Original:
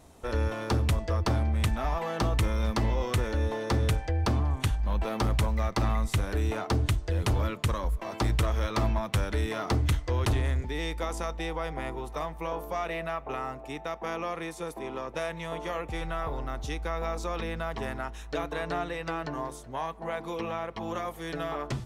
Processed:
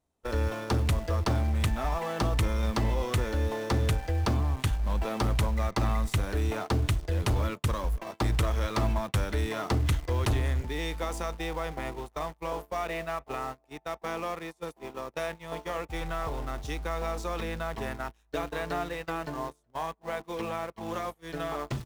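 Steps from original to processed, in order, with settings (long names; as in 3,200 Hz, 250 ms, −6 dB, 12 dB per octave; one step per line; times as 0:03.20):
in parallel at −9 dB: bit reduction 6 bits
on the sum: noise gate −32 dBFS, range −23 dB
level −3 dB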